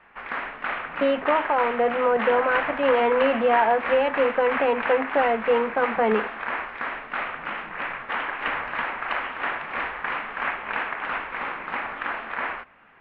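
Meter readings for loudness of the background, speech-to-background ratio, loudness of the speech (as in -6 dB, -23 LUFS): -29.0 LUFS, 6.5 dB, -22.5 LUFS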